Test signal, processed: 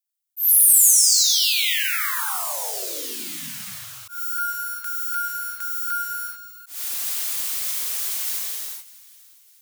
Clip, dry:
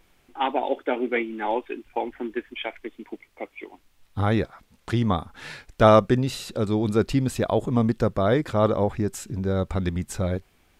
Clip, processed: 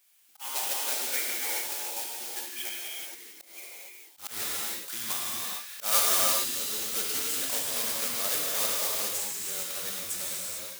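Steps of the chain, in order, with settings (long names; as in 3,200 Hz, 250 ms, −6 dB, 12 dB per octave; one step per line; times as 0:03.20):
one scale factor per block 3 bits
first difference
feedback echo with a high-pass in the loop 604 ms, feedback 42%, high-pass 1,100 Hz, level −21 dB
reverb whose tail is shaped and stops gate 470 ms flat, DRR −4 dB
volume swells 151 ms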